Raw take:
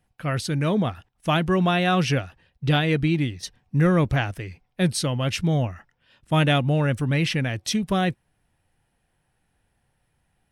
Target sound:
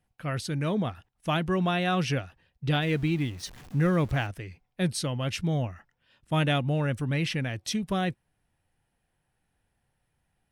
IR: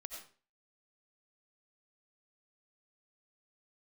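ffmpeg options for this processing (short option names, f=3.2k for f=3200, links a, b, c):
-filter_complex "[0:a]asettb=1/sr,asplit=3[a][b][c];[a]atrim=end=2.824[d];[b]atrim=start=2.82:end=4.27,asetpts=PTS-STARTPTS,afade=t=in:d=0.004:c=qsin,afade=t=out:st=1.446:d=0.004:c=qsin,aeval=exprs='val(0)+0.5*0.0141*sgn(val(0))':c=same[e];[c]atrim=start=4.266[f];[d][e]acrossfade=d=0.004:c1=hsin:c2=qsin[g];[g][f]acrossfade=d=0.004:c1=qsin:c2=hsin,volume=-5.5dB"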